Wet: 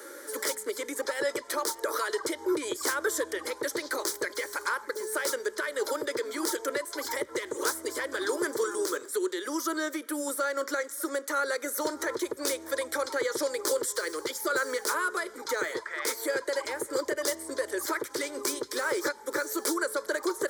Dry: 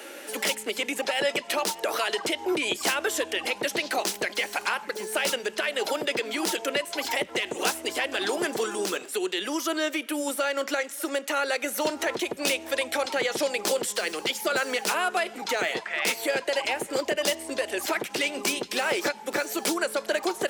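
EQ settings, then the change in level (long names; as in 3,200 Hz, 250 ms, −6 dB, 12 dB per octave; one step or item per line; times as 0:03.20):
phaser with its sweep stopped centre 730 Hz, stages 6
0.0 dB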